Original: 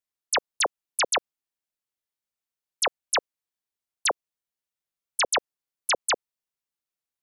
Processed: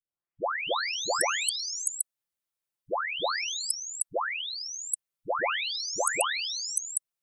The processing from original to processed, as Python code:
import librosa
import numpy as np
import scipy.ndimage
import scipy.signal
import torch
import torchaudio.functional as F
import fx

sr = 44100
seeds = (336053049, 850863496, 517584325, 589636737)

y = fx.spec_delay(x, sr, highs='late', ms=885)
y = F.gain(torch.from_numpy(y), 2.0).numpy()